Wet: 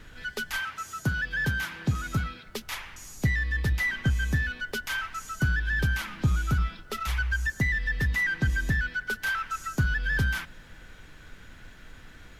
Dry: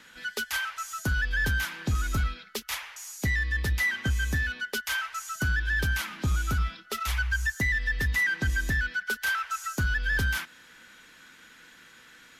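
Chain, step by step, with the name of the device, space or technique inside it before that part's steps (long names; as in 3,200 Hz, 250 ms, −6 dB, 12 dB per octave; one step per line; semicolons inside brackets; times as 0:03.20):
car interior (parametric band 140 Hz +8 dB 0.78 octaves; high-shelf EQ 4,000 Hz −6 dB; brown noise bed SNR 19 dB)
0:00.60–0:02.45: high-pass filter 87 Hz 12 dB per octave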